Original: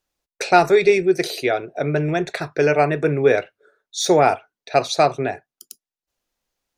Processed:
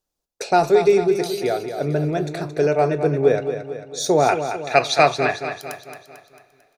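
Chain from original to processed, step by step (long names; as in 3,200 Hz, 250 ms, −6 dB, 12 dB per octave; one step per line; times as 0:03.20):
parametric band 2,100 Hz −9 dB 1.5 octaves, from 0:04.29 +8.5 dB
repeating echo 223 ms, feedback 52%, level −9 dB
coupled-rooms reverb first 0.27 s, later 4.2 s, from −22 dB, DRR 15.5 dB
level −1 dB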